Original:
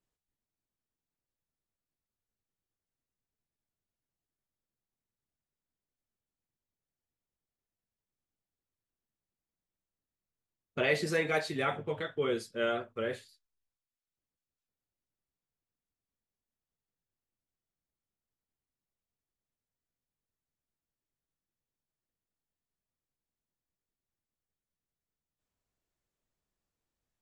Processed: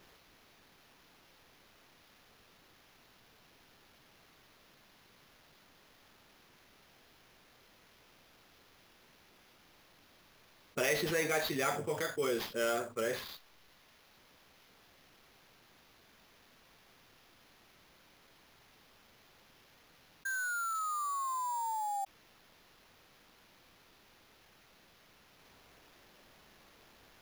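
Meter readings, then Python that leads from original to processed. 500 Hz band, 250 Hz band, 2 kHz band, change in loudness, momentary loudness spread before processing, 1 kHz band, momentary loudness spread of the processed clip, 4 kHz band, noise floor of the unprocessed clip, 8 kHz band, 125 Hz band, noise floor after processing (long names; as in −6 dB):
−2.0 dB, −2.0 dB, 0.0 dB, −2.5 dB, 8 LU, +6.0 dB, 10 LU, +1.0 dB, below −85 dBFS, +11.0 dB, −4.5 dB, −64 dBFS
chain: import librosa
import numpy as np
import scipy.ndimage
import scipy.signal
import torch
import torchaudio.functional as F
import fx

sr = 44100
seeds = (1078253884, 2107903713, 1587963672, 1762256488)

y = fx.low_shelf(x, sr, hz=160.0, db=-11.0)
y = fx.spec_paint(y, sr, seeds[0], shape='fall', start_s=20.25, length_s=1.8, low_hz=780.0, high_hz=1600.0, level_db=-39.0)
y = fx.sample_hold(y, sr, seeds[1], rate_hz=8300.0, jitter_pct=0)
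y = fx.env_flatten(y, sr, amount_pct=50)
y = y * 10.0 ** (-3.5 / 20.0)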